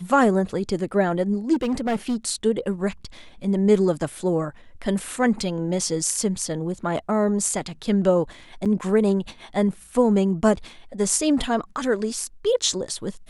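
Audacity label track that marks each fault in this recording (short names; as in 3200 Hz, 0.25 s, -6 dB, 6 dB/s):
1.530000	2.160000	clipped -19.5 dBFS
8.650000	8.660000	gap 7 ms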